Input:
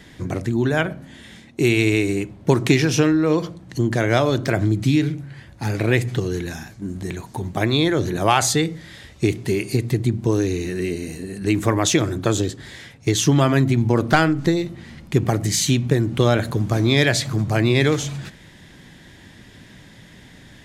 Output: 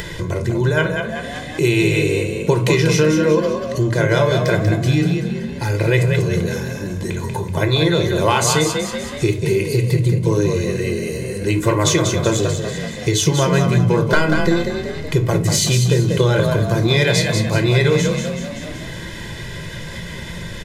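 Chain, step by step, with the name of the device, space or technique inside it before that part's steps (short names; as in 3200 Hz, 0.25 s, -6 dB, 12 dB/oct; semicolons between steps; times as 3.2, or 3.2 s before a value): comb 2 ms, depth 82%; frequency-shifting echo 0.189 s, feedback 42%, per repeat +38 Hz, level -6.5 dB; shoebox room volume 220 m³, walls furnished, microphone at 0.83 m; upward and downward compression (upward compressor, threshold -18 dBFS; compressor, threshold -10 dBFS, peak gain reduction 4.5 dB)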